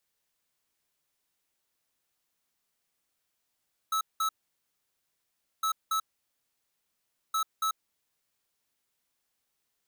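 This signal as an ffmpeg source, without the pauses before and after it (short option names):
-f lavfi -i "aevalsrc='0.0398*(2*lt(mod(1300*t,1),0.5)-1)*clip(min(mod(mod(t,1.71),0.28),0.09-mod(mod(t,1.71),0.28))/0.005,0,1)*lt(mod(t,1.71),0.56)':d=5.13:s=44100"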